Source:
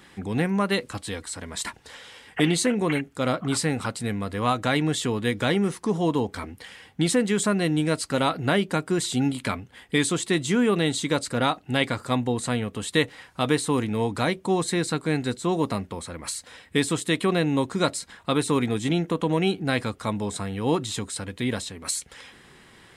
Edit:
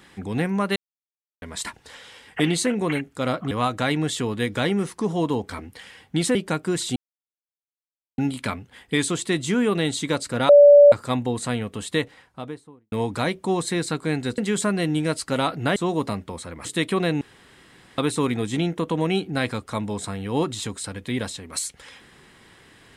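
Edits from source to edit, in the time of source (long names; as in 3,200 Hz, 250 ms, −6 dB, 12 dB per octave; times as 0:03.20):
0:00.76–0:01.42: silence
0:03.51–0:04.36: remove
0:07.20–0:08.58: move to 0:15.39
0:09.19: splice in silence 1.22 s
0:11.50–0:11.93: beep over 578 Hz −6.5 dBFS
0:12.71–0:13.93: fade out and dull
0:16.28–0:16.97: remove
0:17.53–0:18.30: fill with room tone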